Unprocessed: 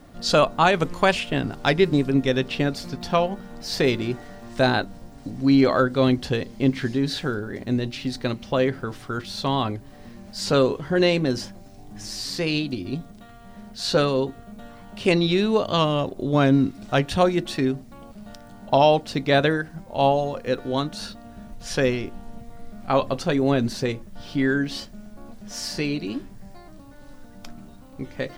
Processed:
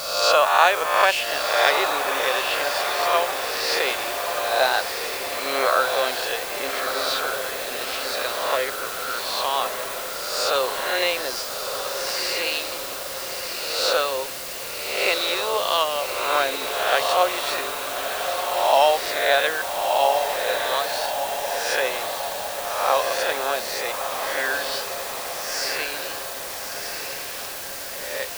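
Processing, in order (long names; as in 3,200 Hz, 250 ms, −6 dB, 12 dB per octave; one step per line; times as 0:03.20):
peak hold with a rise ahead of every peak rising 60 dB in 0.98 s
high-pass filter 560 Hz 24 dB per octave
bit-depth reduction 6 bits, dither triangular
on a send: feedback delay with all-pass diffusion 1,293 ms, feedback 58%, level −6 dB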